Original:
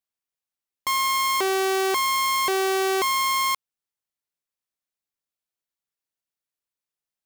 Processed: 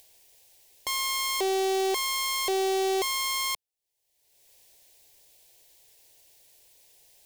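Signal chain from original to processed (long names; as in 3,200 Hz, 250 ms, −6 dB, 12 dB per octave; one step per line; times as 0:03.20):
phaser with its sweep stopped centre 530 Hz, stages 4
upward compression, threshold −33 dBFS
gain into a clipping stage and back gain 20.5 dB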